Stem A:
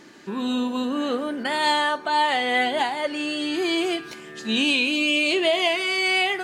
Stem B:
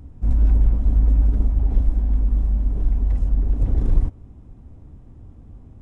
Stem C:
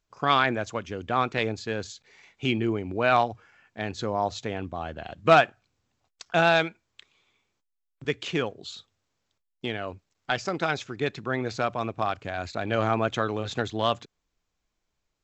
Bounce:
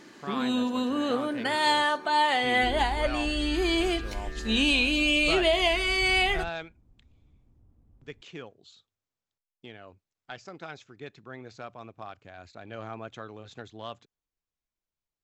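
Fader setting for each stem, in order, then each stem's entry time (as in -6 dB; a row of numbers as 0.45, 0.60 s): -2.5, -18.5, -14.5 dB; 0.00, 2.40, 0.00 s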